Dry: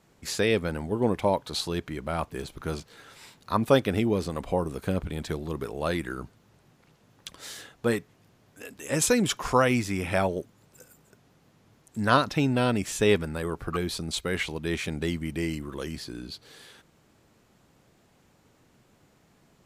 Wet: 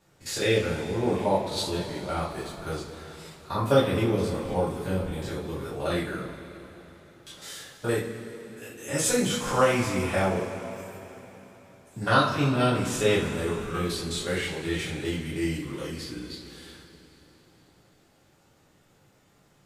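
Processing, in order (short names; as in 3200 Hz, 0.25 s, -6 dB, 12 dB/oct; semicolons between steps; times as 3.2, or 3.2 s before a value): stepped spectrum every 50 ms; two-slope reverb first 0.29 s, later 3.8 s, from -18 dB, DRR -7 dB; gain -5.5 dB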